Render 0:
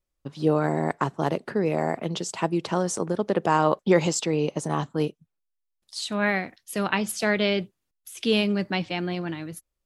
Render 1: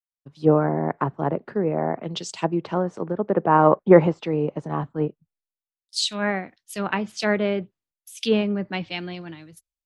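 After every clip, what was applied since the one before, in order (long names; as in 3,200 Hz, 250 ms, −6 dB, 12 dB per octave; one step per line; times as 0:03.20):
treble cut that deepens with the level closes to 1,600 Hz, closed at −20.5 dBFS
multiband upward and downward expander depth 100%
level +1.5 dB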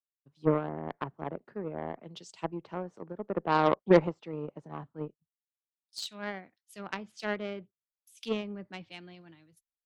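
harmonic generator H 2 −24 dB, 7 −21 dB, 8 −43 dB, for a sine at −1 dBFS
level −8 dB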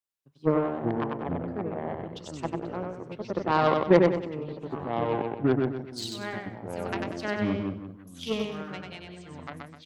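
on a send: repeating echo 95 ms, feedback 36%, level −3.5 dB
on the sum: delay with pitch and tempo change per echo 229 ms, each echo −5 semitones, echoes 2, each echo −6 dB
level +1.5 dB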